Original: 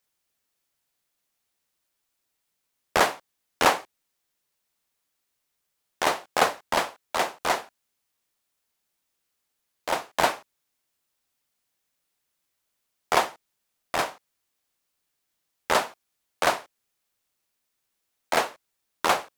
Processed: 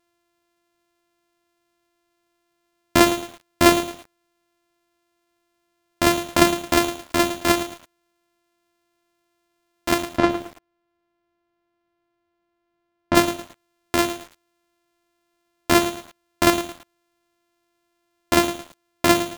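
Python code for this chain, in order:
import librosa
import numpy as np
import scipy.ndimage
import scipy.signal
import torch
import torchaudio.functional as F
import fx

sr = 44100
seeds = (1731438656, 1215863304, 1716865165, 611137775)

p1 = np.r_[np.sort(x[:len(x) // 128 * 128].reshape(-1, 128), axis=1).ravel(), x[len(x) // 128 * 128:]]
p2 = fx.fold_sine(p1, sr, drive_db=4, ceiling_db=-4.5)
p3 = p1 + (p2 * 10.0 ** (-11.5 / 20.0))
p4 = fx.spacing_loss(p3, sr, db_at_10k=25, at=(10.02, 13.15))
p5 = fx.echo_crushed(p4, sr, ms=110, feedback_pct=35, bits=6, wet_db=-11.0)
y = p5 * 10.0 ** (2.0 / 20.0)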